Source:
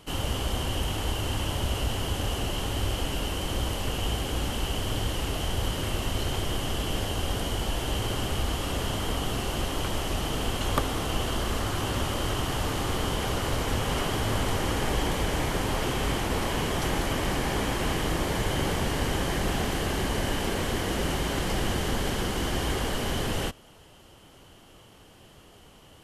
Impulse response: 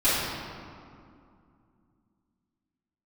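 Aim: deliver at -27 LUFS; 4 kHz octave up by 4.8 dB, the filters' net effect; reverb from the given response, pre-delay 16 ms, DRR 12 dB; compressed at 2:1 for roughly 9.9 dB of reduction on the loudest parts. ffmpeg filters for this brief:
-filter_complex "[0:a]equalizer=f=4000:t=o:g=7,acompressor=threshold=0.00891:ratio=2,asplit=2[s0][s1];[1:a]atrim=start_sample=2205,adelay=16[s2];[s1][s2]afir=irnorm=-1:irlink=0,volume=0.0376[s3];[s0][s3]amix=inputs=2:normalize=0,volume=2.99"

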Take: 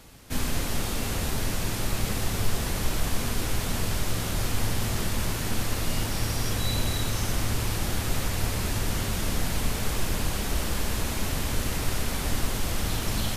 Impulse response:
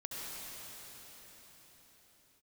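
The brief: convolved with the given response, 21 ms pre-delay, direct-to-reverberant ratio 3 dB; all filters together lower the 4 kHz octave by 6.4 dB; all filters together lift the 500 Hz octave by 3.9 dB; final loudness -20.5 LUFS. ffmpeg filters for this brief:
-filter_complex "[0:a]equalizer=f=500:t=o:g=5,equalizer=f=4000:t=o:g=-8.5,asplit=2[s0][s1];[1:a]atrim=start_sample=2205,adelay=21[s2];[s1][s2]afir=irnorm=-1:irlink=0,volume=0.596[s3];[s0][s3]amix=inputs=2:normalize=0,volume=2.37"

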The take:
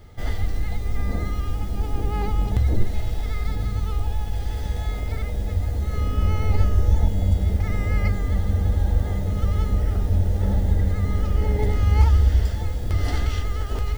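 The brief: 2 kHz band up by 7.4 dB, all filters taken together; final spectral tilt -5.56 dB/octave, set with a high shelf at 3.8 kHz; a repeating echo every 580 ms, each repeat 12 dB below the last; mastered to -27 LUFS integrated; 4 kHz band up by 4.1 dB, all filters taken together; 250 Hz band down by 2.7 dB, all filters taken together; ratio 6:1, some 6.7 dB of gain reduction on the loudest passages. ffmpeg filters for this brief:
-af "equalizer=f=250:t=o:g=-4,equalizer=f=2000:t=o:g=8,highshelf=f=3800:g=-4.5,equalizer=f=4000:t=o:g=5,acompressor=threshold=0.112:ratio=6,aecho=1:1:580|1160|1740:0.251|0.0628|0.0157,volume=1.06"

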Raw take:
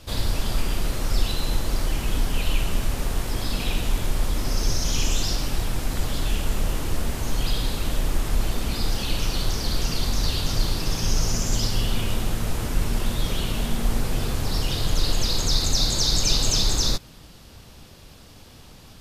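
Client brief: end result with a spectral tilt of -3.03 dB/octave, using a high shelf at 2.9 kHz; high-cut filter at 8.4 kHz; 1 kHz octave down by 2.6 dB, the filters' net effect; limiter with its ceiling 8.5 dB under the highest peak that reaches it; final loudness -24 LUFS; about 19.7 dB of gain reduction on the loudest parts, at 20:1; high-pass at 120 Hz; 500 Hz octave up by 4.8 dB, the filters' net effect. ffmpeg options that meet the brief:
-af "highpass=120,lowpass=8400,equalizer=f=500:t=o:g=7.5,equalizer=f=1000:t=o:g=-7,highshelf=f=2900:g=5,acompressor=threshold=0.0158:ratio=20,volume=8.91,alimiter=limit=0.158:level=0:latency=1"

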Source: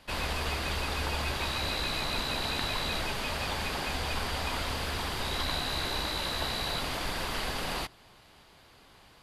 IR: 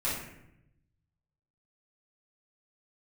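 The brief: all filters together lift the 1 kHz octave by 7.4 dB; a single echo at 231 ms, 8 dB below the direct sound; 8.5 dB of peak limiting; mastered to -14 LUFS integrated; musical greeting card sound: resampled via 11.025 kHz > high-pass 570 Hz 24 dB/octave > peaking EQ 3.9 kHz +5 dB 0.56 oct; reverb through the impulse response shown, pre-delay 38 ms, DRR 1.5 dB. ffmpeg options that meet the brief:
-filter_complex "[0:a]equalizer=f=1000:t=o:g=9,alimiter=limit=0.0891:level=0:latency=1,aecho=1:1:231:0.398,asplit=2[s0][s1];[1:a]atrim=start_sample=2205,adelay=38[s2];[s1][s2]afir=irnorm=-1:irlink=0,volume=0.355[s3];[s0][s3]amix=inputs=2:normalize=0,aresample=11025,aresample=44100,highpass=f=570:w=0.5412,highpass=f=570:w=1.3066,equalizer=f=3900:t=o:w=0.56:g=5,volume=4.47"

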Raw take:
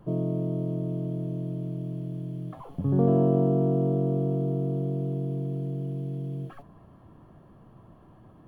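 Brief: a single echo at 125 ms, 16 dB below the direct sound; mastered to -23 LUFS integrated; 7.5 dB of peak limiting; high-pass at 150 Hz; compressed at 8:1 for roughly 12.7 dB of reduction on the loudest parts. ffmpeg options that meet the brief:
-af "highpass=150,acompressor=threshold=0.0251:ratio=8,alimiter=level_in=2.24:limit=0.0631:level=0:latency=1,volume=0.447,aecho=1:1:125:0.158,volume=6.31"

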